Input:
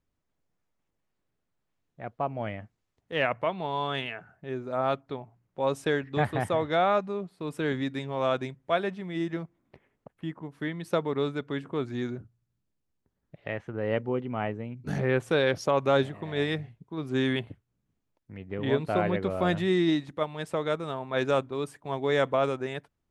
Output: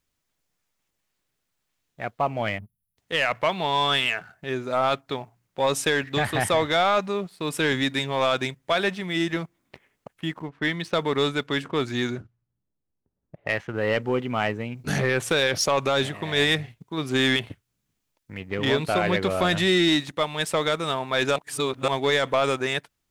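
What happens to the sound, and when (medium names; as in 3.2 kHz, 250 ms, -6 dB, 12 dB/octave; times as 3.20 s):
2.58–2.98 s: spectral selection erased 220–9700 Hz
10.42–14.14 s: level-controlled noise filter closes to 620 Hz, open at -28.5 dBFS
21.36–21.88 s: reverse
whole clip: tilt shelf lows -7 dB, about 1.5 kHz; peak limiter -20 dBFS; waveshaping leveller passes 1; trim +7.5 dB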